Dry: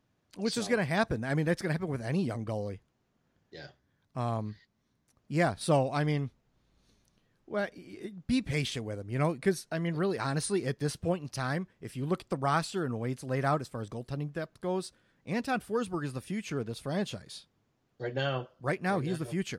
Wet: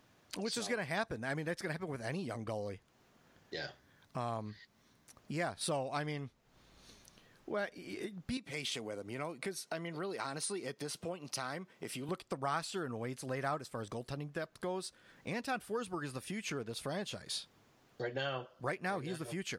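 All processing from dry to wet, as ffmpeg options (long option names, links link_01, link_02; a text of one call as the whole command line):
ffmpeg -i in.wav -filter_complex "[0:a]asettb=1/sr,asplit=3[link_01][link_02][link_03];[link_01]atrim=end=8.374[link_04];[link_02]atrim=start=8.37:end=12.09,asetpts=PTS-STARTPTS,afade=type=in:duration=0.004:curve=qsin,afade=type=out:start_time=3.716:duration=0.004:curve=qsin,highpass=170,bandreject=frequency=1700:width=9,acompressor=threshold=-45dB:ratio=1.5:attack=3.2:release=140:knee=1:detection=peak[link_05];[link_03]atrim=start=12.086[link_06];[link_04][link_05]acrossfade=duration=0.004:curve1=hsin:curve2=qsin[link_07];[link_07][link_06]acrossfade=duration=0.004:curve1=qsin:curve2=hsin,acompressor=threshold=-49dB:ratio=3,lowshelf=frequency=340:gain=-9,volume=12dB" out.wav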